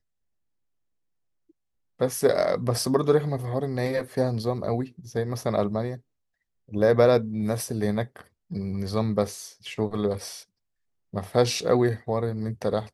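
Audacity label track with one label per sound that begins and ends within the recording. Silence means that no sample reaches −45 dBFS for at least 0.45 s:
2.000000	5.990000	sound
6.690000	10.430000	sound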